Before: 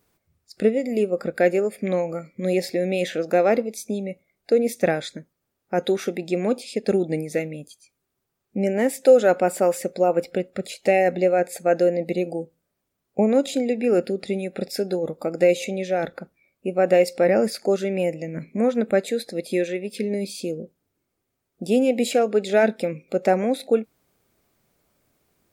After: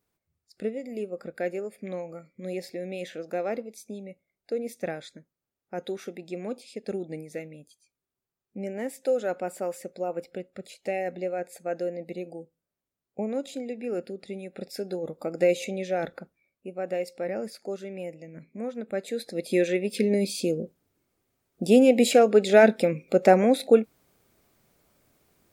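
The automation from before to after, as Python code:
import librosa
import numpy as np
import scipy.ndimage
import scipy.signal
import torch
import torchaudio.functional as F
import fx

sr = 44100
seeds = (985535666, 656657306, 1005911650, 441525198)

y = fx.gain(x, sr, db=fx.line((14.26, -11.5), (15.45, -4.5), (16.15, -4.5), (16.74, -13.0), (18.86, -13.0), (19.16, -6.0), (19.75, 2.0)))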